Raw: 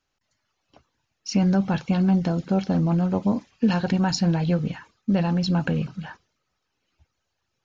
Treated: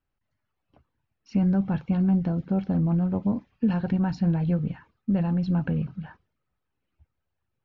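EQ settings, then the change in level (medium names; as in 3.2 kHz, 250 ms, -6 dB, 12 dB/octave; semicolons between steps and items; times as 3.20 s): low-pass 2.5 kHz 12 dB/octave; bass shelf 220 Hz +10.5 dB; -8.0 dB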